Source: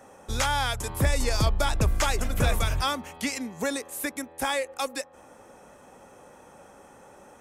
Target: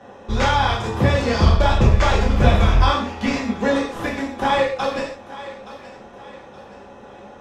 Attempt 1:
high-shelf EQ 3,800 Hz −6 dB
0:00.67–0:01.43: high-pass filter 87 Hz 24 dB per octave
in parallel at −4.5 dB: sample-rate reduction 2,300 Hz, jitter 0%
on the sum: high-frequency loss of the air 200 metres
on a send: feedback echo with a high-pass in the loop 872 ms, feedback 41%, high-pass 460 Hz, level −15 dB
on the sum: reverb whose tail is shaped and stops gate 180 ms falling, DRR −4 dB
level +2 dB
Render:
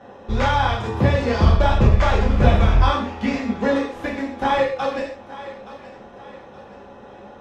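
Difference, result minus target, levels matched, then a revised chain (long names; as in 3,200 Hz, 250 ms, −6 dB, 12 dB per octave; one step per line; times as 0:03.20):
8,000 Hz band −6.0 dB
high-shelf EQ 3,800 Hz +4.5 dB
0:00.67–0:01.43: high-pass filter 87 Hz 24 dB per octave
in parallel at −4.5 dB: sample-rate reduction 2,300 Hz, jitter 0%
on the sum: high-frequency loss of the air 200 metres
on a send: feedback echo with a high-pass in the loop 872 ms, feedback 41%, high-pass 460 Hz, level −15 dB
on the sum: reverb whose tail is shaped and stops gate 180 ms falling, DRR −4 dB
level +2 dB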